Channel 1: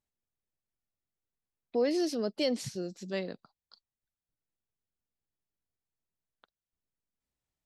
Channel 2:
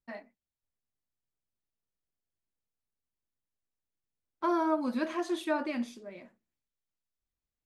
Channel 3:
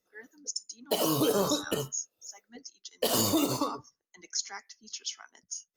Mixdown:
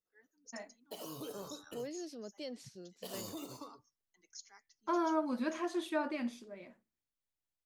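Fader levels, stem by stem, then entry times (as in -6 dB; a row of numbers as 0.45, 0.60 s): -14.5, -4.0, -18.5 dB; 0.00, 0.45, 0.00 s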